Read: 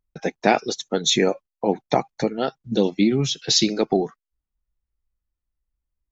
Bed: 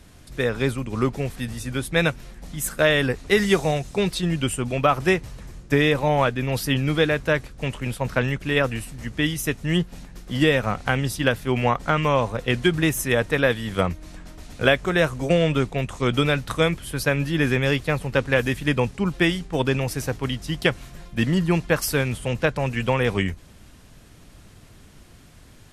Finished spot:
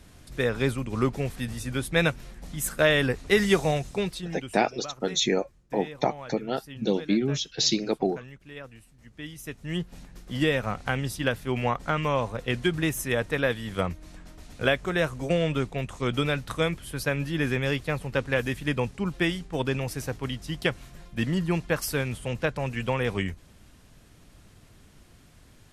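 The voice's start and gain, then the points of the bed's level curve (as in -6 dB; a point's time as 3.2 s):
4.10 s, -5.5 dB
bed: 3.87 s -2.5 dB
4.69 s -21 dB
8.96 s -21 dB
9.98 s -5.5 dB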